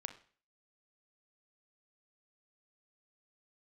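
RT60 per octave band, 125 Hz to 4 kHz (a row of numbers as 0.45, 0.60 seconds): 0.45, 0.45, 0.45, 0.45, 0.45, 0.45 seconds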